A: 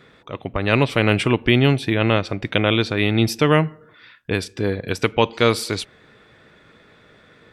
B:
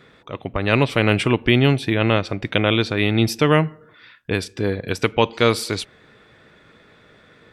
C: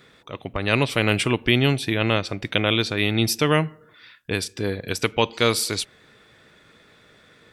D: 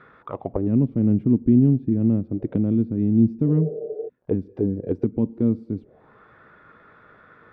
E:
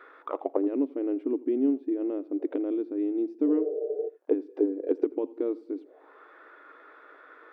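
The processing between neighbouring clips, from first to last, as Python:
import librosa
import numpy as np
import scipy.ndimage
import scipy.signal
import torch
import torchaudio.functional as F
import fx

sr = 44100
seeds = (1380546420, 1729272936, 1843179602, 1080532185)

y1 = x
y2 = fx.high_shelf(y1, sr, hz=4100.0, db=11.5)
y2 = y2 * librosa.db_to_amplitude(-4.0)
y3 = fx.dmg_crackle(y2, sr, seeds[0], per_s=93.0, level_db=-46.0)
y3 = fx.spec_repair(y3, sr, seeds[1], start_s=3.49, length_s=0.57, low_hz=330.0, high_hz=820.0, source='before')
y3 = fx.envelope_lowpass(y3, sr, base_hz=240.0, top_hz=1400.0, q=3.0, full_db=-21.0, direction='down')
y4 = fx.brickwall_highpass(y3, sr, low_hz=270.0)
y4 = y4 + 10.0 ** (-21.0 / 20.0) * np.pad(y4, (int(84 * sr / 1000.0), 0))[:len(y4)]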